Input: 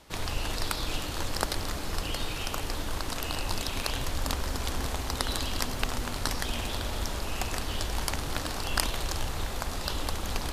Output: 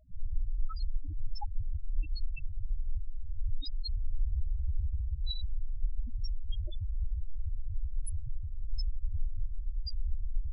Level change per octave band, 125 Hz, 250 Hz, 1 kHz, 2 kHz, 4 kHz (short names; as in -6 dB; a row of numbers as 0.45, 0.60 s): -2.5, -24.0, -21.0, -27.5, -14.5 dB